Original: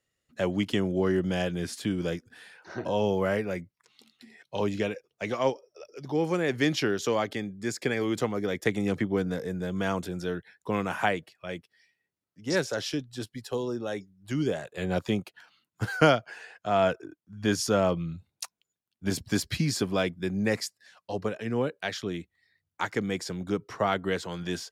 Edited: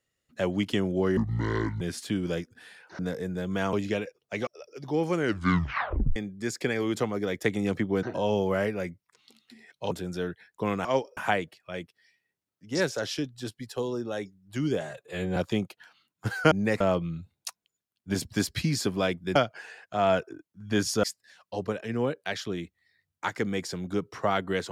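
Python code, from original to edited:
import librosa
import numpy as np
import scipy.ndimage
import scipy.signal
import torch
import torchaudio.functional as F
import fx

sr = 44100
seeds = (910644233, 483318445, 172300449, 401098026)

y = fx.edit(x, sr, fx.speed_span(start_s=1.17, length_s=0.39, speed=0.61),
    fx.swap(start_s=2.74, length_s=1.88, other_s=9.24, other_length_s=0.74),
    fx.move(start_s=5.36, length_s=0.32, to_s=10.92),
    fx.tape_stop(start_s=6.33, length_s=1.04),
    fx.stretch_span(start_s=14.56, length_s=0.37, factor=1.5),
    fx.swap(start_s=16.08, length_s=1.68, other_s=20.31, other_length_s=0.29), tone=tone)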